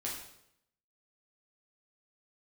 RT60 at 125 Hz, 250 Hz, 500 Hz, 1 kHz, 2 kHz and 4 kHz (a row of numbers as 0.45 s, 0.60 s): 0.90 s, 0.80 s, 0.80 s, 0.70 s, 0.70 s, 0.65 s